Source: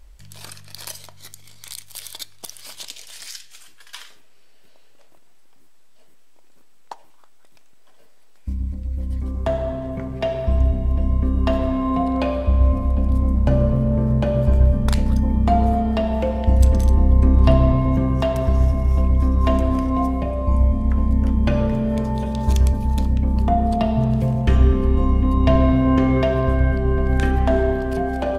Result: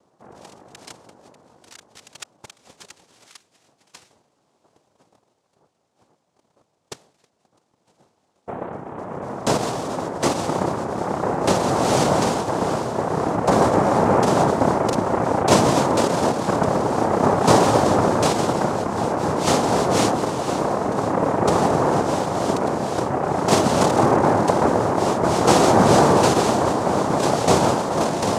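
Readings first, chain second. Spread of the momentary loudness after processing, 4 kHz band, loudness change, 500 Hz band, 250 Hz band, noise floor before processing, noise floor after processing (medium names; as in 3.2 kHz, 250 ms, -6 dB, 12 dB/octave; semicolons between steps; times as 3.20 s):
8 LU, +8.0 dB, +0.5 dB, +5.0 dB, -0.5 dB, -42 dBFS, -69 dBFS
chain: local Wiener filter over 25 samples; noise-vocoded speech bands 2; trim +3 dB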